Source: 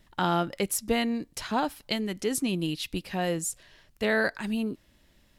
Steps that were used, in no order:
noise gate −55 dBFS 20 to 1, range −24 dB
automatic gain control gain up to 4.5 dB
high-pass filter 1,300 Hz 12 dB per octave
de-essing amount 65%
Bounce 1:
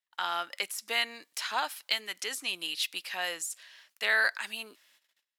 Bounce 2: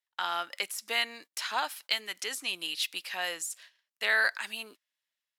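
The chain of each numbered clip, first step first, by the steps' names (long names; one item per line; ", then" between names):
de-essing, then automatic gain control, then noise gate, then high-pass filter
high-pass filter, then de-essing, then noise gate, then automatic gain control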